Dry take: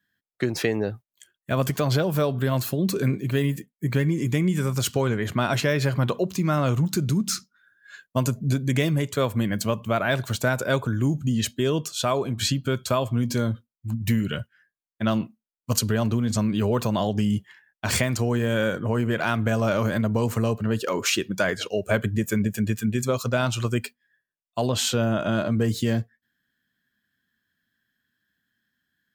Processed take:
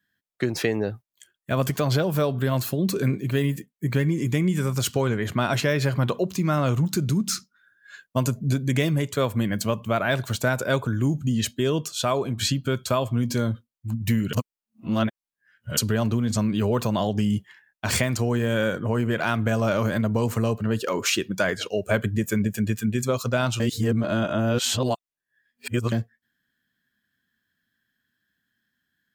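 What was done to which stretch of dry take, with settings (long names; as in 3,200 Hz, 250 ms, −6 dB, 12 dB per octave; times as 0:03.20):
0:14.33–0:15.77: reverse
0:23.60–0:25.92: reverse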